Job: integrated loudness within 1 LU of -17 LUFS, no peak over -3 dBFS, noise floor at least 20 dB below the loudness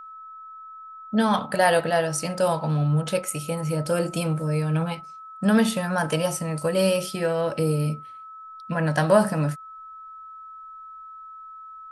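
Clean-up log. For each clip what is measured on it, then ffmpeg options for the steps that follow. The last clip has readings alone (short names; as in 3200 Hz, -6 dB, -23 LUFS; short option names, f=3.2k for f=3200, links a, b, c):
steady tone 1300 Hz; tone level -39 dBFS; loudness -24.0 LUFS; peak -5.5 dBFS; loudness target -17.0 LUFS
-> -af "bandreject=f=1.3k:w=30"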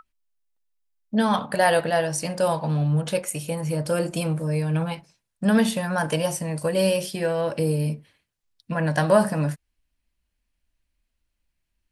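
steady tone none; loudness -24.0 LUFS; peak -5.5 dBFS; loudness target -17.0 LUFS
-> -af "volume=7dB,alimiter=limit=-3dB:level=0:latency=1"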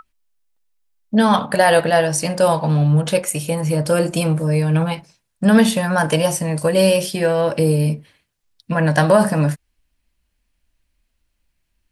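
loudness -17.5 LUFS; peak -3.0 dBFS; noise floor -72 dBFS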